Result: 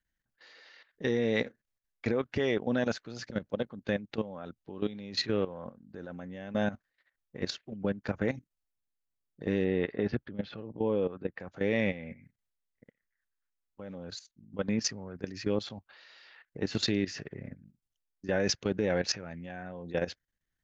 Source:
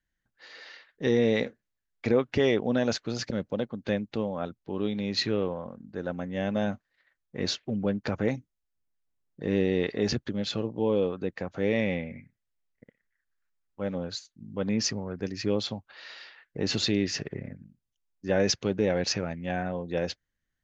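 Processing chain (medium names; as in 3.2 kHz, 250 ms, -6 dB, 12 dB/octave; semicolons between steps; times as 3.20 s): level held to a coarse grid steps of 14 dB; 9.64–11.40 s: Gaussian low-pass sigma 2.4 samples; dynamic bell 1.6 kHz, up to +4 dB, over -55 dBFS, Q 2.1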